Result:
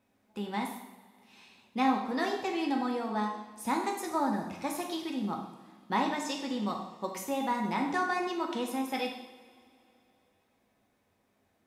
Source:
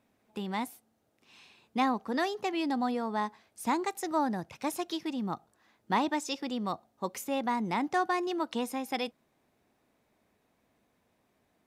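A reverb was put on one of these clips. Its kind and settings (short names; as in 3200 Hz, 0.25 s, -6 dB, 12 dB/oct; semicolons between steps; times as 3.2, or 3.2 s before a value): two-slope reverb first 0.79 s, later 2.9 s, from -18 dB, DRR 0 dB; gain -3 dB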